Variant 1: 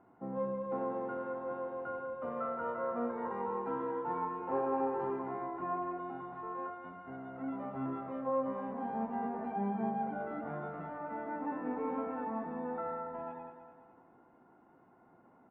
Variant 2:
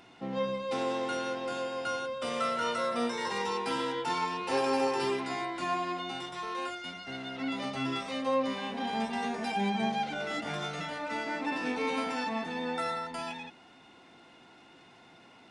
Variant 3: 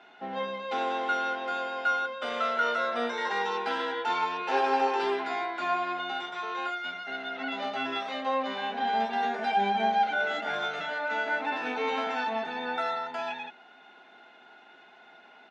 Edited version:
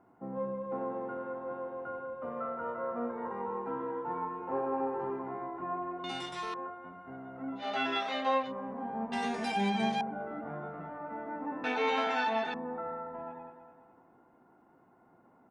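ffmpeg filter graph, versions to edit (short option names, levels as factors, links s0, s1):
-filter_complex "[1:a]asplit=2[s0][s1];[2:a]asplit=2[s2][s3];[0:a]asplit=5[s4][s5][s6][s7][s8];[s4]atrim=end=6.042[s9];[s0]atrim=start=6.038:end=6.542[s10];[s5]atrim=start=6.538:end=7.71[s11];[s2]atrim=start=7.55:end=8.53[s12];[s6]atrim=start=8.37:end=9.122[s13];[s1]atrim=start=9.118:end=10.012[s14];[s7]atrim=start=10.008:end=11.642[s15];[s3]atrim=start=11.638:end=12.542[s16];[s8]atrim=start=12.538[s17];[s9][s10]acrossfade=d=0.004:c1=hsin:c2=hsin[s18];[s18][s11]acrossfade=d=0.004:c1=hsin:c2=hsin[s19];[s19][s12]acrossfade=d=0.16:c1=tri:c2=tri[s20];[s20][s13]acrossfade=d=0.16:c1=tri:c2=tri[s21];[s21][s14]acrossfade=d=0.004:c1=hsin:c2=hsin[s22];[s22][s15]acrossfade=d=0.004:c1=hsin:c2=hsin[s23];[s23][s16]acrossfade=d=0.004:c1=hsin:c2=hsin[s24];[s24][s17]acrossfade=d=0.004:c1=hsin:c2=hsin"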